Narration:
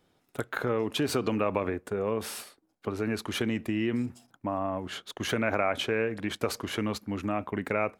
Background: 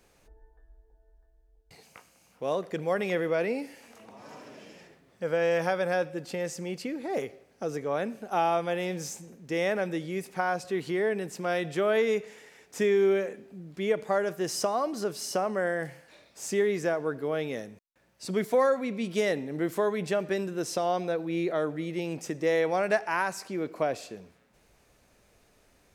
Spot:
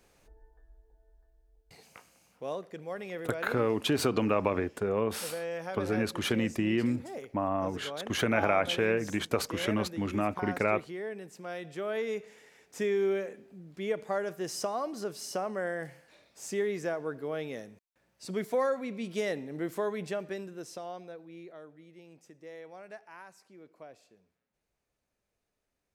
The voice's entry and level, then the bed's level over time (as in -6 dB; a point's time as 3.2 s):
2.90 s, +0.5 dB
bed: 2.16 s -1.5 dB
2.77 s -10.5 dB
11.58 s -10.5 dB
12.52 s -5 dB
19.98 s -5 dB
21.71 s -21 dB